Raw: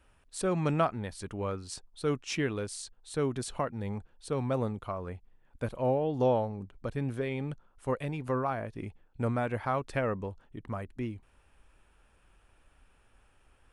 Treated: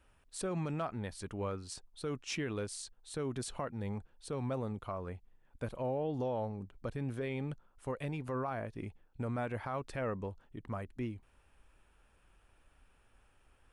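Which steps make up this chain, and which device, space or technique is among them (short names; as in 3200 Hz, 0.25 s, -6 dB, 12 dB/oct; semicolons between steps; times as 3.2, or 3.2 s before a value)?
clipper into limiter (hard clip -17 dBFS, distortion -38 dB; limiter -25 dBFS, peak gain reduction 8 dB); gain -3 dB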